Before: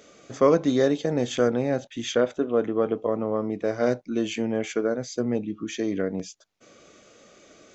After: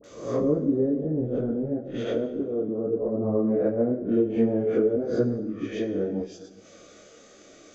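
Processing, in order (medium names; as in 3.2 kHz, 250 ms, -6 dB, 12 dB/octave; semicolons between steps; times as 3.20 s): reverse spectral sustain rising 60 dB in 0.62 s; low-pass that closes with the level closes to 320 Hz, closed at -19.5 dBFS; phase dispersion highs, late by 41 ms, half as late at 890 Hz; 3.12–5.27 s: harmonic-percussive split harmonic +4 dB; fifteen-band graphic EQ 160 Hz -4 dB, 1 kHz -5 dB, 2.5 kHz -4 dB; plate-style reverb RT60 1.4 s, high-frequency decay 0.85×, DRR 8.5 dB; detune thickener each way 21 cents; trim +4.5 dB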